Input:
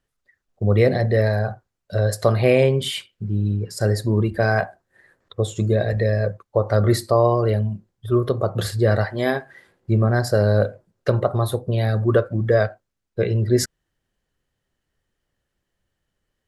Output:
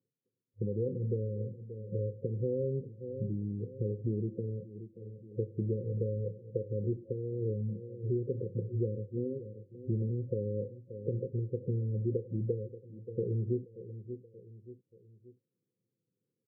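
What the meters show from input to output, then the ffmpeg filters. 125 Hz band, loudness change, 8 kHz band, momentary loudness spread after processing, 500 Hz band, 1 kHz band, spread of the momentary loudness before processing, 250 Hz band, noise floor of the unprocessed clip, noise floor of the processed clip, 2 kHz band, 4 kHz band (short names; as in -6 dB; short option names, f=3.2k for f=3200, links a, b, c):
-13.5 dB, -15.0 dB, under -40 dB, 13 LU, -16.0 dB, under -40 dB, 10 LU, -13.0 dB, -79 dBFS, under -85 dBFS, under -40 dB, under -40 dB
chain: -af "aecho=1:1:580|1160|1740:0.0944|0.0415|0.0183,acompressor=threshold=-25dB:ratio=6,afftfilt=real='re*between(b*sr/4096,100,540)':imag='im*between(b*sr/4096,100,540)':win_size=4096:overlap=0.75,volume=-4dB"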